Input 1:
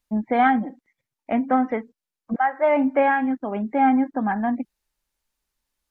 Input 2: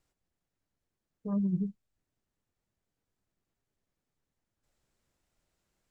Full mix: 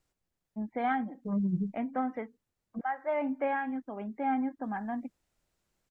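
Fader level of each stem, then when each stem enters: -12.0, 0.0 dB; 0.45, 0.00 s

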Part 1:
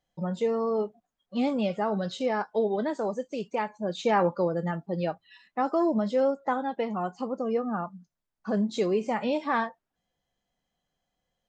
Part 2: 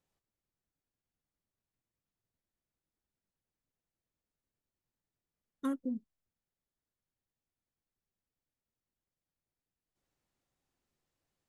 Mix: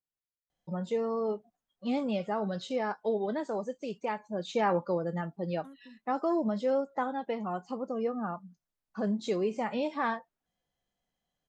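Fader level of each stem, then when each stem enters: -4.0, -17.0 dB; 0.50, 0.00 s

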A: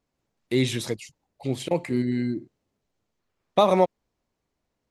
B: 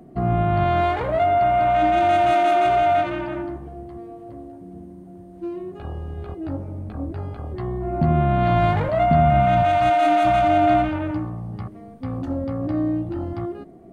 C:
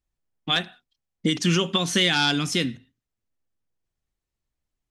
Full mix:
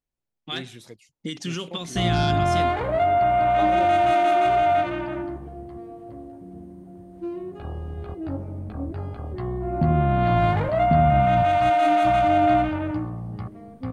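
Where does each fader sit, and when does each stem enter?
-15.0, -1.5, -9.0 dB; 0.00, 1.80, 0.00 s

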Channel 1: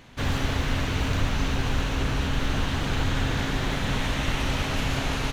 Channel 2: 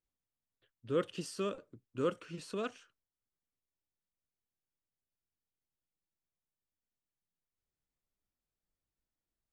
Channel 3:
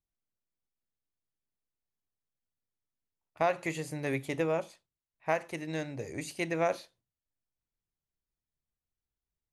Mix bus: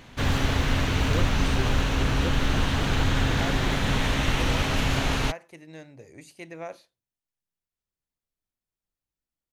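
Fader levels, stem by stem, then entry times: +2.0, -1.5, -8.5 dB; 0.00, 0.20, 0.00 s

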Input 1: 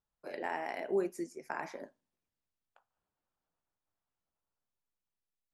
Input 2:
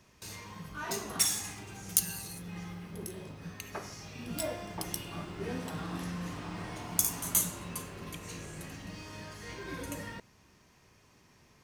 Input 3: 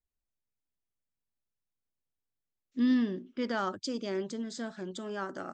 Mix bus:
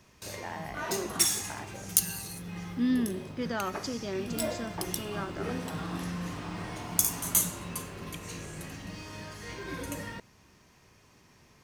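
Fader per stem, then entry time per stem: -3.0, +2.5, -1.0 dB; 0.00, 0.00, 0.00 s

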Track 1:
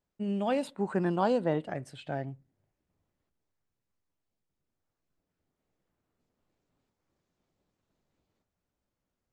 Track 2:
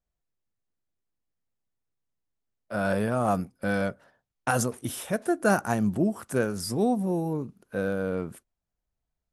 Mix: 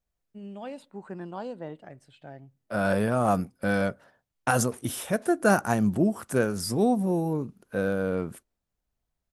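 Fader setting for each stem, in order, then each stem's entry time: -9.5, +1.5 dB; 0.15, 0.00 s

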